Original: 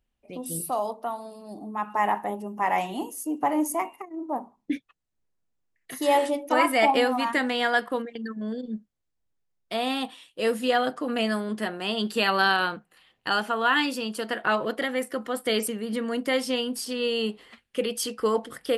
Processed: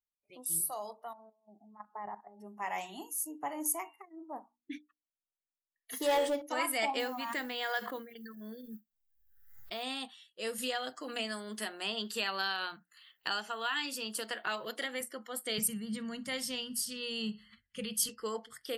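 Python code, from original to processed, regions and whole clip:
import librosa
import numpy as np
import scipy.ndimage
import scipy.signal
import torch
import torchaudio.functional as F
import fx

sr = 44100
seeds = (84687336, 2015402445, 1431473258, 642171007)

y = fx.chain(x, sr, fx.lowpass(hz=1100.0, slope=12),
    fx.level_steps(step_db=14), at=(1.13, 2.4))
y = fx.chain(y, sr, fx.high_shelf(hz=3100.0, db=-9.0),
    fx.leveller(passes=2),
    fx.small_body(hz=(470.0, 3300.0), ring_ms=60, db=15), at=(5.93, 6.42))
y = fx.chain(y, sr, fx.high_shelf(hz=5300.0, db=-9.5),
    fx.mod_noise(seeds[0], snr_db=31),
    fx.pre_swell(db_per_s=52.0), at=(6.99, 9.83))
y = fx.chain(y, sr, fx.quant_float(bits=8),
    fx.low_shelf(hz=240.0, db=-5.0),
    fx.band_squash(depth_pct=70), at=(10.58, 15.01))
y = fx.chain(y, sr, fx.low_shelf_res(hz=230.0, db=11.5, q=3.0),
    fx.echo_feedback(ms=61, feedback_pct=59, wet_db=-23.0), at=(15.58, 18.09))
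y = scipy.signal.lfilter([1.0, -0.8], [1.0], y)
y = fx.hum_notches(y, sr, base_hz=60, count=5)
y = fx.noise_reduce_blind(y, sr, reduce_db=17)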